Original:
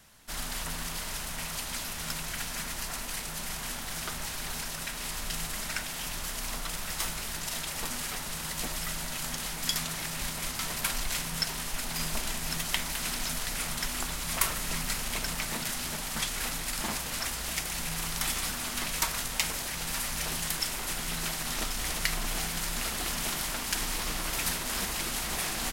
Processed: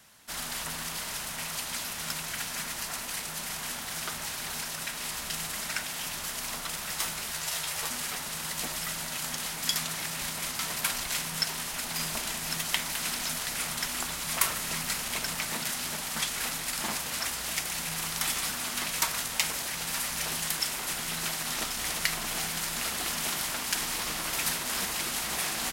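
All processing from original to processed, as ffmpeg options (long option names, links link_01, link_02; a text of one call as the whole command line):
ffmpeg -i in.wav -filter_complex "[0:a]asettb=1/sr,asplit=3[link_01][link_02][link_03];[link_01]atrim=end=7.314[link_04];[link_02]atrim=start=7.31:end=7.9,asetpts=PTS-STARTPTS,afade=type=in:duration=0.004:curve=qsin,afade=type=out:start_time=0.586:duration=0.004:curve=qsin,equalizer=frequency=240:width=2.2:gain=-14.5,asplit=2[link_05][link_06];[link_06]adelay=13,volume=-5dB[link_07];[link_05][link_07]amix=inputs=2:normalize=0,atrim=end_sample=26019[link_08];[link_03]atrim=start=7.896[link_09];[link_04][link_08]acrossfade=duration=0.004:curve1=hsin:curve2=qsin[link_10];[link_10][link_09]acrossfade=duration=0.004:curve1=qsin:curve2=hsin,highpass=frequency=170:poles=1,equalizer=frequency=360:width_type=o:width=1.7:gain=-2,volume=1.5dB" out.wav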